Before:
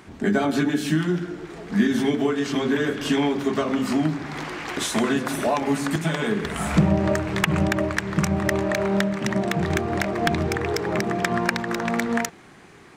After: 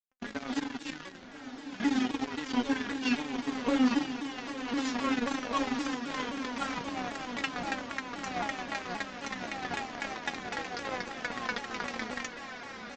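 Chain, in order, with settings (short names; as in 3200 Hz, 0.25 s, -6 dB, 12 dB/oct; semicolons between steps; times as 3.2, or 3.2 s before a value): HPF 110 Hz 6 dB/oct; low shelf 180 Hz -9 dB; notches 60/120/180/240/300/360 Hz; in parallel at -1.5 dB: negative-ratio compressor -28 dBFS, ratio -0.5; on the sum: bit-crush 5-bit; resonator 260 Hz, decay 0.15 s, harmonics all, mix 100%; added harmonics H 7 -17 dB, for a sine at -18.5 dBFS; air absorption 83 m; on a send: diffused feedback echo 1.035 s, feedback 65%, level -8 dB; on the sum: downsampling 16000 Hz; shaped vibrato saw down 3.8 Hz, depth 160 cents; gain +1.5 dB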